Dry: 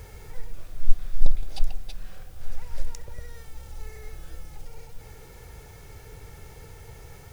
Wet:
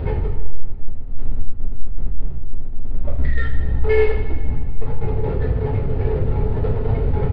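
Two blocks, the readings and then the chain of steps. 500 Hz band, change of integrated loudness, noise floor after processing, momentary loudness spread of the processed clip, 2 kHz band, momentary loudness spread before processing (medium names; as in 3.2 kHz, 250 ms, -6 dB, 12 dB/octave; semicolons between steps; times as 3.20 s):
+26.0 dB, +16.5 dB, -23 dBFS, 14 LU, +17.0 dB, 14 LU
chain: spectral noise reduction 9 dB; spectral gate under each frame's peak -15 dB strong; in parallel at -1 dB: peak limiter -13 dBFS, peak gain reduction 28 dB; on the sum: power-law waveshaper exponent 0.5; reverse; compression 16:1, threshold -19 dBFS, peak gain reduction 17 dB; reverse; distance through air 220 m; multi-head delay 78 ms, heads first and second, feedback 57%, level -16 dB; two-slope reverb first 0.45 s, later 1.9 s, DRR -6.5 dB; resampled via 11.025 kHz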